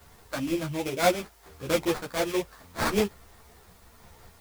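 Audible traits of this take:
aliases and images of a low sample rate 2,900 Hz, jitter 20%
sample-and-hold tremolo
a quantiser's noise floor 10 bits, dither triangular
a shimmering, thickened sound

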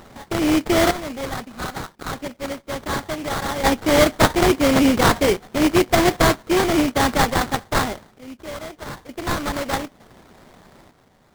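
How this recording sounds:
a buzz of ramps at a fixed pitch in blocks of 16 samples
sample-and-hold tremolo 1.1 Hz, depth 90%
aliases and images of a low sample rate 2,700 Hz, jitter 20%
Nellymoser

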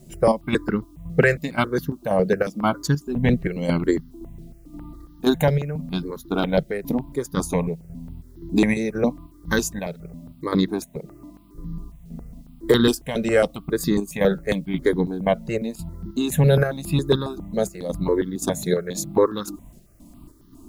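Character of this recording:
chopped level 1.9 Hz, depth 60%, duty 60%
a quantiser's noise floor 12 bits, dither triangular
notches that jump at a steady rate 7.3 Hz 290–2,400 Hz

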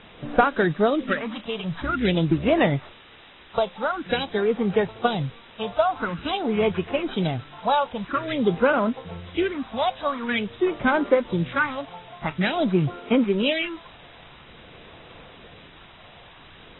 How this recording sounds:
a buzz of ramps at a fixed pitch in blocks of 8 samples
phaser sweep stages 4, 0.48 Hz, lowest notch 310–4,700 Hz
a quantiser's noise floor 8 bits, dither triangular
AAC

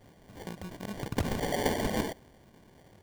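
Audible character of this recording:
aliases and images of a low sample rate 1,300 Hz, jitter 0%

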